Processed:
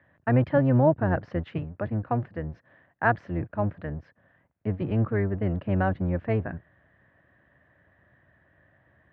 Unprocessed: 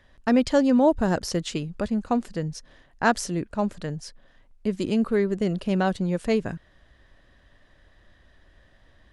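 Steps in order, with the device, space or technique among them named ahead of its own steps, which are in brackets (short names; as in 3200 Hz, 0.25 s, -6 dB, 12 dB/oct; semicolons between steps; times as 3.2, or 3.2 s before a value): 1.58–3.16 HPF 150 Hz 6 dB/oct; sub-octave bass pedal (octaver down 1 oct, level +2 dB; speaker cabinet 86–2200 Hz, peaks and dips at 230 Hz -4 dB, 410 Hz -4 dB, 650 Hz +3 dB, 1700 Hz +4 dB); gain -3 dB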